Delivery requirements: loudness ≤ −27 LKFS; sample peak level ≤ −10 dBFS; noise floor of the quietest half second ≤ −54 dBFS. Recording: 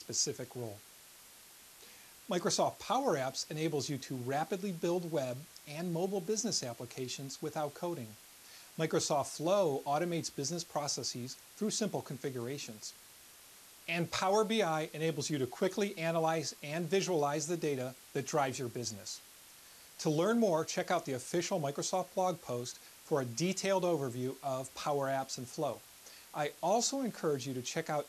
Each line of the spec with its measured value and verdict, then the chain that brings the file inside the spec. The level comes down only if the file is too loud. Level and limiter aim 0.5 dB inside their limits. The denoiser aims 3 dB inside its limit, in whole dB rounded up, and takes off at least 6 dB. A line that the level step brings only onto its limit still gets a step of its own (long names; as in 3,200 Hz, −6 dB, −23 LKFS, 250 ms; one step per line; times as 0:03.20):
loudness −35.0 LKFS: in spec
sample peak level −19.5 dBFS: in spec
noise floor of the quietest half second −57 dBFS: in spec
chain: no processing needed